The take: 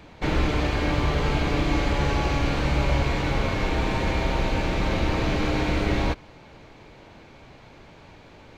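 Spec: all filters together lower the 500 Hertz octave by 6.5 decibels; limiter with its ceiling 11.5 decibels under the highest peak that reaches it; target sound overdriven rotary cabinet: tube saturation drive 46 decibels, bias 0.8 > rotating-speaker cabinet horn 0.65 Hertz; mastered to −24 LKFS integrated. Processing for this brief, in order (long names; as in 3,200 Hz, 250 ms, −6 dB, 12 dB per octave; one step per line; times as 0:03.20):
parametric band 500 Hz −8.5 dB
brickwall limiter −22.5 dBFS
tube saturation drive 46 dB, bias 0.8
rotating-speaker cabinet horn 0.65 Hz
level +27 dB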